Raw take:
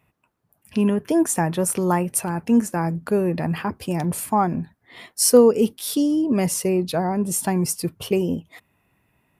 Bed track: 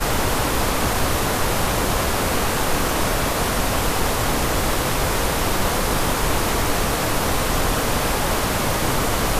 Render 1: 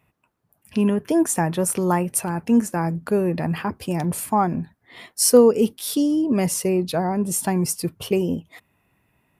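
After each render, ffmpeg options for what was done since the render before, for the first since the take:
-af anull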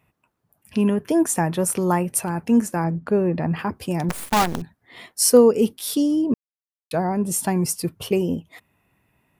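-filter_complex "[0:a]asettb=1/sr,asplit=3[s0][s1][s2];[s0]atrim=end=2.844[s3];[s1]atrim=start=2.84:end=3.59,asetpts=PTS-STARTPTS,afade=t=in:d=0.004:c=qsin,afade=t=out:st=0.746:d=0.004:c=qsin,aemphasis=mode=reproduction:type=75fm[s4];[s2]atrim=start=3.586[s5];[s3][s4]acrossfade=d=0.004:c1=hsin:c2=qsin[s6];[s6][s5]acrossfade=d=0.004:c1=qsin:c2=hsin,asettb=1/sr,asplit=3[s7][s8][s9];[s7]atrim=end=4.094[s10];[s8]atrim=start=4.09:end=4.62,asetpts=PTS-STARTPTS,afade=t=in:d=0.004:c=qsin,afade=t=out:st=0.526:d=0.004:c=qsin,acrusher=bits=4:dc=4:mix=0:aa=0.000001[s11];[s9]atrim=start=4.616[s12];[s10][s11]acrossfade=d=0.004:c1=hsin:c2=qsin[s13];[s13][s12]acrossfade=d=0.004:c1=qsin:c2=hsin,asplit=3[s14][s15][s16];[s14]atrim=end=6.34,asetpts=PTS-STARTPTS,afade=t=out:st=6.336:d=0.004:c=hsin[s17];[s15]atrim=start=6.34:end=6.91,asetpts=PTS-STARTPTS,volume=0[s18];[s16]atrim=start=6.91,asetpts=PTS-STARTPTS,afade=t=in:d=0.004:c=hsin[s19];[s17][s18][s19]concat=n=3:v=0:a=1"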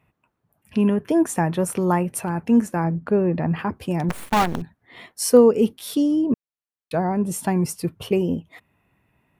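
-af "bass=f=250:g=1,treble=f=4000:g=-7,bandreject=f=4900:w=27"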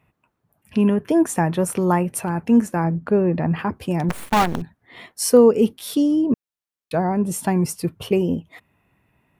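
-af "volume=1.19,alimiter=limit=0.708:level=0:latency=1"

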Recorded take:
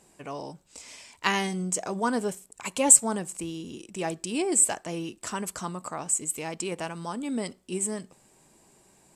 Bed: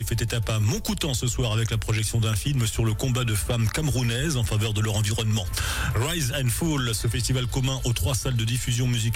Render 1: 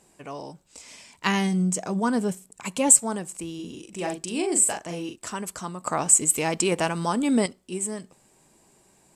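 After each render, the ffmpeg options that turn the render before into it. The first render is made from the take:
-filter_complex "[0:a]asettb=1/sr,asplit=3[s0][s1][s2];[s0]atrim=end=0.914[s3];[s1]atrim=start=0.91:end=2.92,asetpts=PTS-STARTPTS,afade=t=in:d=0.004:c=qsin,afade=t=out:st=2.006:d=0.004:c=qsin,equalizer=f=180:w=1.5:g=8.5[s4];[s2]atrim=start=2.916[s5];[s3][s4]acrossfade=d=0.004:c1=hsin:c2=qsin[s6];[s6][s5]acrossfade=d=0.004:c1=qsin:c2=hsin,asettb=1/sr,asplit=3[s7][s8][s9];[s7]atrim=end=3.554[s10];[s8]atrim=start=3.55:end=5.16,asetpts=PTS-STARTPTS,afade=t=in:d=0.004:c=qsin,afade=t=out:st=1.606:d=0.004:c=qsin,asplit=2[s11][s12];[s12]adelay=40,volume=0.562[s13];[s11][s13]amix=inputs=2:normalize=0,atrim=end_sample=71001[s14];[s9]atrim=start=5.156[s15];[s10][s14]acrossfade=d=0.004:c1=hsin:c2=qsin[s16];[s16][s15]acrossfade=d=0.004:c1=qsin:c2=hsin,asplit=3[s17][s18][s19];[s17]atrim=end=5.872[s20];[s18]atrim=start=5.868:end=7.462,asetpts=PTS-STARTPTS,volume=2.82[s21];[s19]atrim=start=7.458[s22];[s20][s21]acrossfade=d=0.004:c1=hsin:c2=hsin[s23];[s23][s22]acrossfade=d=0.004:c1=hsin:c2=hsin"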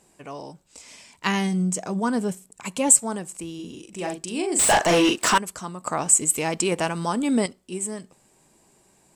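-filter_complex "[0:a]asettb=1/sr,asplit=3[s0][s1][s2];[s0]atrim=end=4.594[s3];[s1]atrim=start=4.59:end=5.38,asetpts=PTS-STARTPTS,afade=t=in:d=0.004:c=qsin,afade=t=out:st=0.786:d=0.004:c=qsin,asplit=2[s4][s5];[s5]highpass=f=720:p=1,volume=35.5,asoftclip=type=tanh:threshold=0.422[s6];[s4][s6]amix=inputs=2:normalize=0,lowpass=f=3900:p=1,volume=0.501[s7];[s2]atrim=start=5.376[s8];[s3][s7]acrossfade=d=0.004:c1=hsin:c2=qsin[s9];[s9][s8]acrossfade=d=0.004:c1=qsin:c2=hsin"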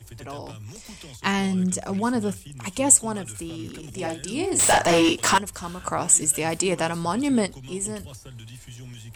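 -filter_complex "[1:a]volume=0.141[s0];[0:a][s0]amix=inputs=2:normalize=0"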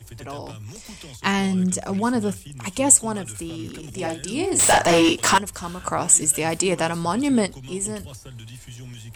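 -af "volume=1.26,alimiter=limit=0.794:level=0:latency=1"

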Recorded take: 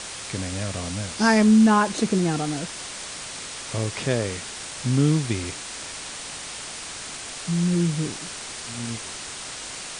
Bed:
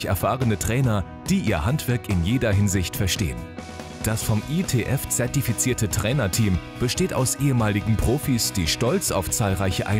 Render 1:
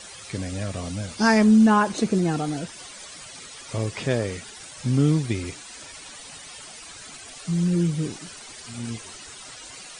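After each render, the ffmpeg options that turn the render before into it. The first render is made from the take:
-af "afftdn=nr=13:nf=-36"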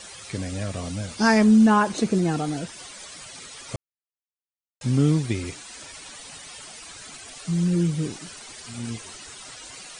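-filter_complex "[0:a]asplit=3[s0][s1][s2];[s0]atrim=end=3.76,asetpts=PTS-STARTPTS,afade=t=out:st=3.756:d=0.004:c=hsin[s3];[s1]atrim=start=3.76:end=4.81,asetpts=PTS-STARTPTS,volume=0[s4];[s2]atrim=start=4.81,asetpts=PTS-STARTPTS,afade=t=in:d=0.004:c=hsin[s5];[s3][s4][s5]concat=n=3:v=0:a=1"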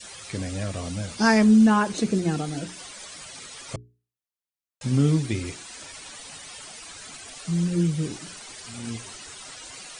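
-af "adynamicequalizer=threshold=0.0178:dfrequency=850:dqfactor=0.85:tfrequency=850:tqfactor=0.85:attack=5:release=100:ratio=0.375:range=2.5:mode=cutabove:tftype=bell,bandreject=f=60:t=h:w=6,bandreject=f=120:t=h:w=6,bandreject=f=180:t=h:w=6,bandreject=f=240:t=h:w=6,bandreject=f=300:t=h:w=6,bandreject=f=360:t=h:w=6,bandreject=f=420:t=h:w=6"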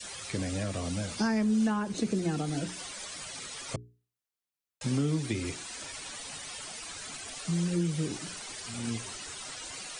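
-filter_complex "[0:a]acrossover=split=180|360[s0][s1][s2];[s0]acompressor=threshold=0.0158:ratio=4[s3];[s1]acompressor=threshold=0.0224:ratio=4[s4];[s2]acompressor=threshold=0.0178:ratio=4[s5];[s3][s4][s5]amix=inputs=3:normalize=0"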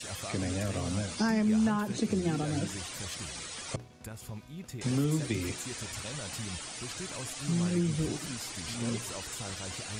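-filter_complex "[1:a]volume=0.1[s0];[0:a][s0]amix=inputs=2:normalize=0"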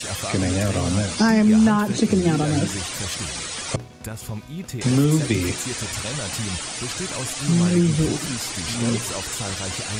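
-af "volume=3.55"

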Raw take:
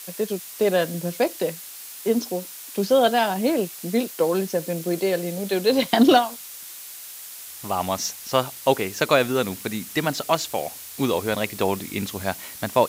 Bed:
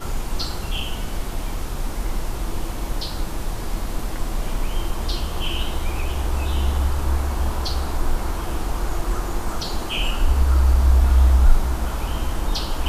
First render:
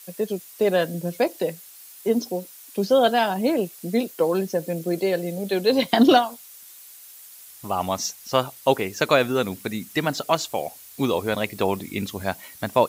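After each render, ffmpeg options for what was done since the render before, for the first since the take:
-af "afftdn=nr=9:nf=-39"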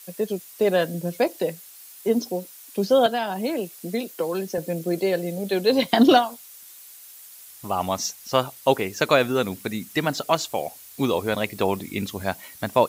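-filter_complex "[0:a]asettb=1/sr,asplit=3[s0][s1][s2];[s0]atrim=end=3.064[s3];[s1]atrim=start=3.06:end=4.58,asetpts=PTS-STARTPTS,afade=t=in:d=0.004:c=qsin,afade=t=out:st=1.516:d=0.004:c=qsin,acrossover=split=190|1500[s4][s5][s6];[s4]acompressor=threshold=0.00708:ratio=4[s7];[s5]acompressor=threshold=0.0631:ratio=4[s8];[s6]acompressor=threshold=0.0251:ratio=4[s9];[s7][s8][s9]amix=inputs=3:normalize=0[s10];[s2]atrim=start=4.576[s11];[s3][s10]acrossfade=d=0.004:c1=hsin:c2=qsin[s12];[s12][s11]acrossfade=d=0.004:c1=qsin:c2=hsin"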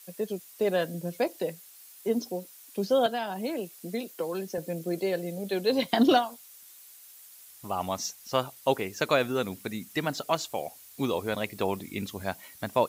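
-af "volume=0.501"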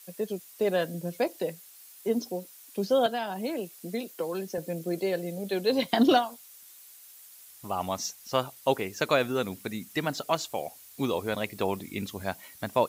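-af anull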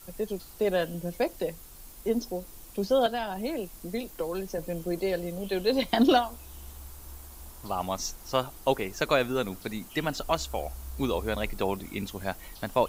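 -filter_complex "[1:a]volume=0.0562[s0];[0:a][s0]amix=inputs=2:normalize=0"

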